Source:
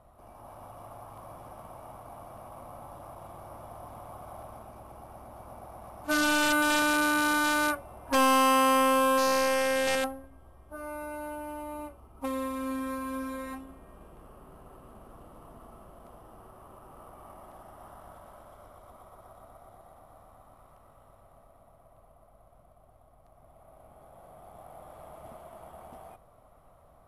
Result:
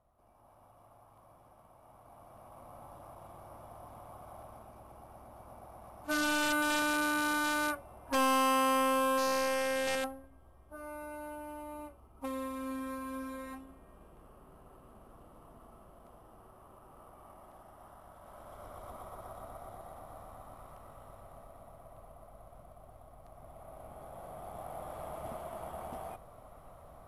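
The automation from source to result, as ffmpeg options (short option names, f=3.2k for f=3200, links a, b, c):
-af "volume=5dB,afade=t=in:st=1.78:d=1.06:silence=0.375837,afade=t=in:st=18.16:d=0.69:silence=0.298538"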